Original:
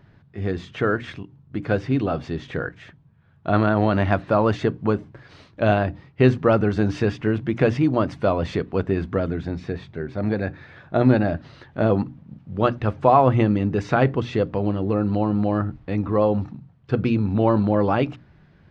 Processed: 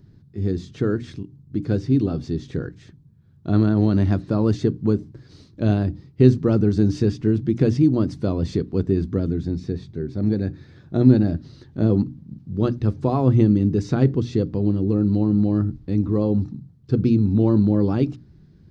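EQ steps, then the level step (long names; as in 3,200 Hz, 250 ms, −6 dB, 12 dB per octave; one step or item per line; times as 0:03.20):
flat-topped bell 1,300 Hz −15.5 dB 2.9 octaves
+3.5 dB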